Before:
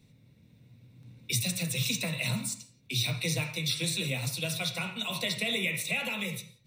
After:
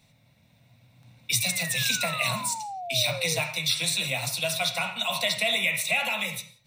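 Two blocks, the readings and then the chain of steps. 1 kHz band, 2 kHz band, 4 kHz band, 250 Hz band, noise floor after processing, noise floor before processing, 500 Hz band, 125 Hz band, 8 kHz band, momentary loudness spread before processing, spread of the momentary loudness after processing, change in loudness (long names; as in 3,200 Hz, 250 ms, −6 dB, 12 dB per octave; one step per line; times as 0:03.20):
+11.5 dB, +6.5 dB, +5.5 dB, −4.0 dB, −62 dBFS, −62 dBFS, +6.5 dB, −3.0 dB, +5.5 dB, 5 LU, 5 LU, +5.0 dB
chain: low shelf with overshoot 530 Hz −8 dB, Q 3
sound drawn into the spectrogram fall, 0:01.40–0:03.39, 450–2,400 Hz −41 dBFS
level +5.5 dB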